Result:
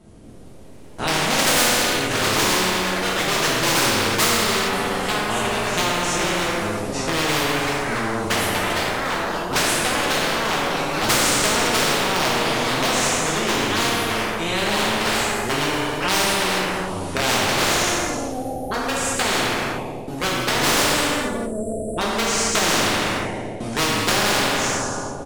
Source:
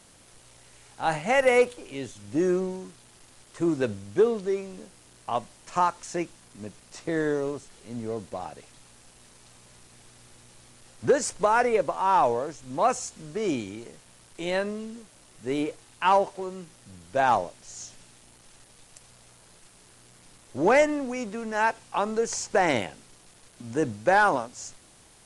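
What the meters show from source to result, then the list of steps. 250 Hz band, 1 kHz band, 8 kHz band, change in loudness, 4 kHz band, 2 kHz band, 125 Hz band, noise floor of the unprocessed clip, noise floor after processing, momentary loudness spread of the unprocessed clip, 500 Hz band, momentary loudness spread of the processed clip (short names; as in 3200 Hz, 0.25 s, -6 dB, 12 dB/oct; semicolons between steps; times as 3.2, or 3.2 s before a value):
+6.5 dB, +5.0 dB, +16.5 dB, +6.5 dB, +21.5 dB, +11.0 dB, +11.0 dB, -55 dBFS, -31 dBFS, 19 LU, +2.5 dB, 8 LU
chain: gate with hold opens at -41 dBFS; notches 60/120/180/240/300 Hz; spectral delete 20.64–21.98, 710–7400 Hz; EQ curve 320 Hz 0 dB, 900 Hz -15 dB, 7600 Hz -29 dB; on a send: feedback echo 0.224 s, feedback 38%, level -18 dB; on the sum: wavefolder -24 dBFS; high shelf 4500 Hz +6.5 dB; non-linear reverb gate 0.48 s falling, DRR -7.5 dB; in parallel at -2 dB: compressor, threshold -36 dBFS, peak gain reduction 17.5 dB; on the sum: echoes that change speed 0.23 s, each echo +3 st, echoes 3, each echo -6 dB; spectral compressor 4:1; gain +7 dB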